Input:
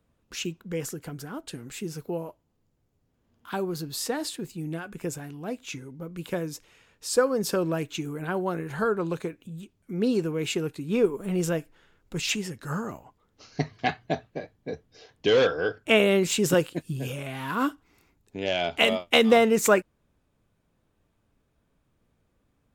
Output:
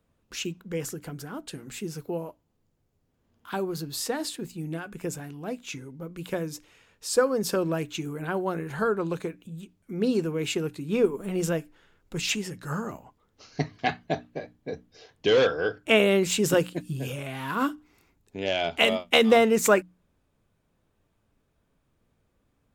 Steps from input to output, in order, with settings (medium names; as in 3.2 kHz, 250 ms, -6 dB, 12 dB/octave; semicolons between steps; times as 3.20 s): hum notches 60/120/180/240/300 Hz